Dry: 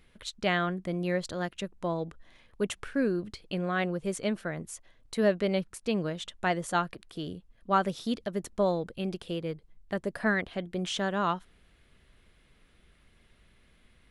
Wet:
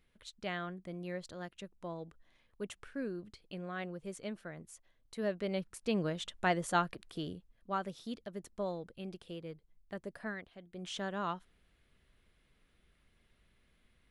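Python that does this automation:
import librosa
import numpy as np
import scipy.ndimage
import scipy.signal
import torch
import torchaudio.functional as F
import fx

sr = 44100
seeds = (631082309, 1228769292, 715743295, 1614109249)

y = fx.gain(x, sr, db=fx.line((5.15, -11.5), (6.03, -2.5), (7.18, -2.5), (7.77, -11.0), (10.11, -11.0), (10.6, -19.0), (10.93, -8.5)))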